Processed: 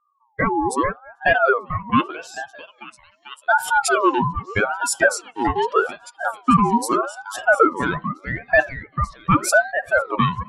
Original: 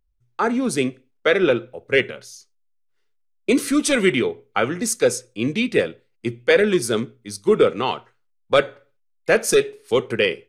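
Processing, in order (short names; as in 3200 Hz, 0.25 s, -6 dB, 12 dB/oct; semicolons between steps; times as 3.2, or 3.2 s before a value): spectral contrast raised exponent 2; delay with a stepping band-pass 0.443 s, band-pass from 790 Hz, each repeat 0.7 oct, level -3 dB; ring modulator with a swept carrier 890 Hz, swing 35%, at 0.82 Hz; gain +3.5 dB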